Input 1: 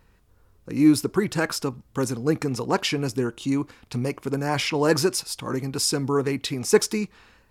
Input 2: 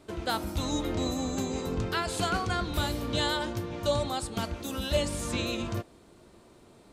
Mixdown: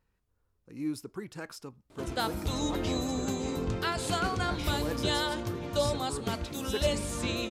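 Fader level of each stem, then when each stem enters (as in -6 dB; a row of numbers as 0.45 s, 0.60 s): -17.0 dB, -1.0 dB; 0.00 s, 1.90 s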